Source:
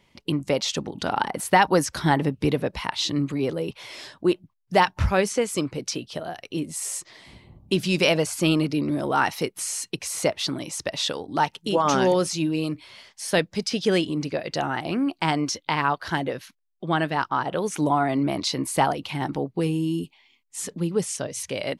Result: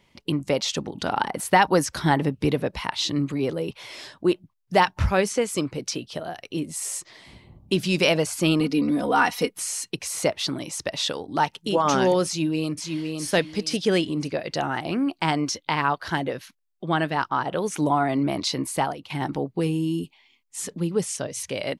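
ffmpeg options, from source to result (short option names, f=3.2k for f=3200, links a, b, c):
-filter_complex "[0:a]asettb=1/sr,asplit=3[a][b][c];[a]atrim=end=8.604[d];[b]atrim=start=8.6:end=9.56,asetpts=PTS-STARTPTS,afade=t=in:d=0.004:c=qsin,afade=t=out:st=0.956:d=0.004:c=qsin,aecho=1:1:4.1:0.78,atrim=end_sample=42336[e];[c]atrim=start=9.556[f];[d][e]acrossfade=d=0.004:c1=hsin:c2=qsin[g];[g][f]acrossfade=d=0.004:c1=qsin:c2=hsin,asplit=2[h][i];[i]afade=t=in:st=12.26:d=0.01,afade=t=out:st=13.25:d=0.01,aecho=0:1:510|1020|1530:0.595662|0.148916|0.0372289[j];[h][j]amix=inputs=2:normalize=0,asplit=2[k][l];[k]atrim=end=19.1,asetpts=PTS-STARTPTS,afade=t=out:st=18.58:d=0.52:silence=0.281838[m];[l]atrim=start=19.1,asetpts=PTS-STARTPTS,afade=t=in:d=0.004:c=hsin:silence=0.281838[n];[m][n]concat=n=2:v=0:a=1"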